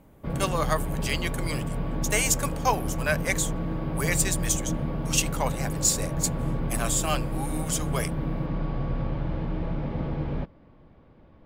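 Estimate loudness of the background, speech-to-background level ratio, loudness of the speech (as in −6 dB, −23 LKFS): −31.0 LKFS, 3.0 dB, −28.0 LKFS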